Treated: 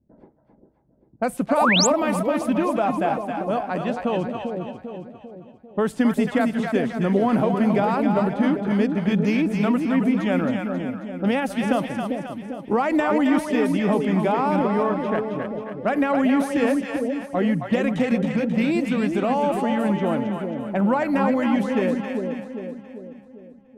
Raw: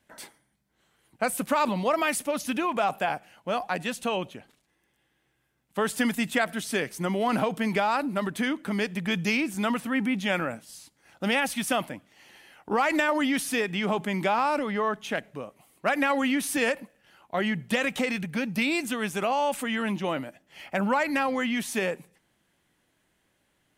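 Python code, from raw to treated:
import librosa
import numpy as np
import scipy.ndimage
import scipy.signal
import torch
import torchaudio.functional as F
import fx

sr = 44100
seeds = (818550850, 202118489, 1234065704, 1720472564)

y = fx.env_lowpass(x, sr, base_hz=330.0, full_db=-24.0)
y = fx.tilt_shelf(y, sr, db=8.0, hz=1100.0)
y = fx.echo_split(y, sr, split_hz=620.0, low_ms=396, high_ms=269, feedback_pct=52, wet_db=-4.5)
y = fx.spec_paint(y, sr, seeds[0], shape='rise', start_s=1.57, length_s=0.3, low_hz=520.0, high_hz=8200.0, level_db=-19.0)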